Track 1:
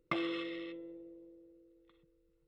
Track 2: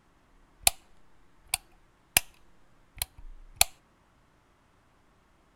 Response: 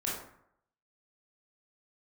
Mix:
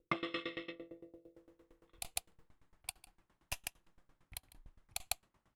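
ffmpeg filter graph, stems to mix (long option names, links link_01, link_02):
-filter_complex "[0:a]dynaudnorm=framelen=190:gausssize=3:maxgain=8dB,volume=-1dB,asplit=3[link_01][link_02][link_03];[link_02]volume=-11dB[link_04];[link_03]volume=-20.5dB[link_05];[1:a]adelay=1350,volume=-4.5dB,asplit=2[link_06][link_07];[link_07]volume=-10dB[link_08];[2:a]atrim=start_sample=2205[link_09];[link_04][link_09]afir=irnorm=-1:irlink=0[link_10];[link_05][link_08]amix=inputs=2:normalize=0,aecho=0:1:151:1[link_11];[link_01][link_06][link_10][link_11]amix=inputs=4:normalize=0,aeval=exprs='val(0)*pow(10,-23*if(lt(mod(8.8*n/s,1),2*abs(8.8)/1000),1-mod(8.8*n/s,1)/(2*abs(8.8)/1000),(mod(8.8*n/s,1)-2*abs(8.8)/1000)/(1-2*abs(8.8)/1000))/20)':channel_layout=same"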